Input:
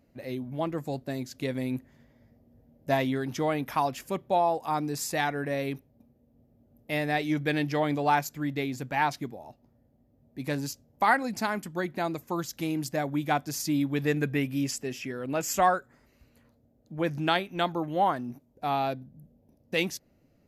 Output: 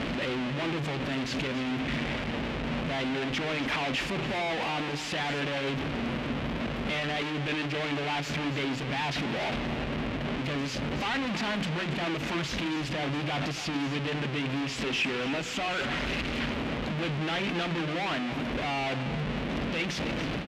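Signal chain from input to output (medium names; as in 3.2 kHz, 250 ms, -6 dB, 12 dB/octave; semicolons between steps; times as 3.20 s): one-bit comparator; high-pass 44 Hz; peaking EQ 94 Hz -11.5 dB 0.58 oct; hum notches 60/120/180/240/300/360/420/480/540 Hz; peak limiter -26 dBFS, peak gain reduction 4 dB; resonant low-pass 2.8 kHz, resonance Q 1.6; peaking EQ 930 Hz -6 dB 3 oct; delay 280 ms -12.5 dB; endings held to a fixed fall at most 130 dB/s; trim +5 dB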